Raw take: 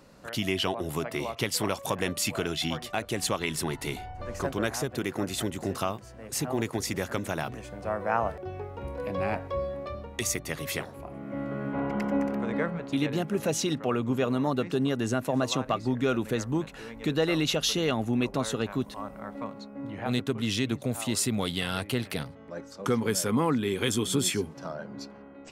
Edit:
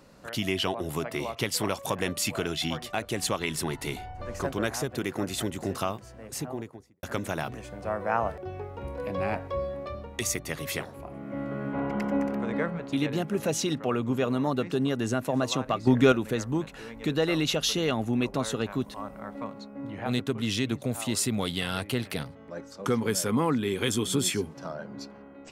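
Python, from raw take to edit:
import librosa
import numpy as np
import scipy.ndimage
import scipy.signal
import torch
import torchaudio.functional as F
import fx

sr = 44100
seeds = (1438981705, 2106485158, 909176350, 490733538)

y = fx.studio_fade_out(x, sr, start_s=6.09, length_s=0.94)
y = fx.edit(y, sr, fx.clip_gain(start_s=15.87, length_s=0.25, db=7.0), tone=tone)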